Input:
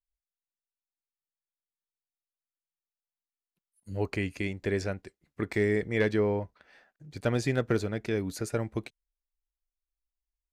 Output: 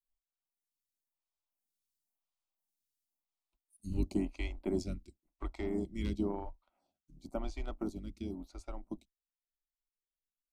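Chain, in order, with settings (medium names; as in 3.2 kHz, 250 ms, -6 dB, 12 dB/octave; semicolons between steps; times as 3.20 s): octave divider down 2 oct, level +2 dB; Doppler pass-by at 2.32 s, 13 m/s, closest 14 m; static phaser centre 460 Hz, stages 6; transient shaper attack +2 dB, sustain -6 dB; lamp-driven phase shifter 0.96 Hz; trim +8 dB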